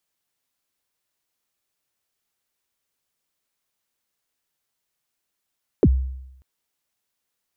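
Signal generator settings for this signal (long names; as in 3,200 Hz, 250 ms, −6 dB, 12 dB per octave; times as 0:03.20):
synth kick length 0.59 s, from 500 Hz, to 65 Hz, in 50 ms, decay 0.85 s, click off, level −9 dB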